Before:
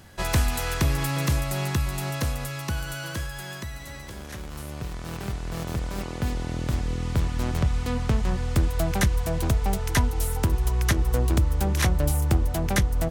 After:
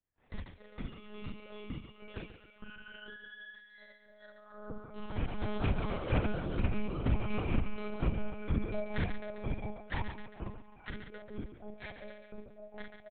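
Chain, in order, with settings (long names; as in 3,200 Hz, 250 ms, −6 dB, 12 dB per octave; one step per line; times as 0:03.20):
loose part that buzzes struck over −23 dBFS, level −23 dBFS
source passing by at 0:05.59, 8 m/s, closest 9.9 metres
noise reduction from a noise print of the clip's start 29 dB
treble cut that deepens with the level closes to 1,000 Hz, closed at −21 dBFS
double-tracking delay 47 ms −2.5 dB
on a send: feedback echo with a high-pass in the loop 134 ms, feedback 59%, high-pass 210 Hz, level −8 dB
on the sum: low-pass that shuts in the quiet parts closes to 2,900 Hz, open at −25.5 dBFS
one-pitch LPC vocoder at 8 kHz 210 Hz
level −3 dB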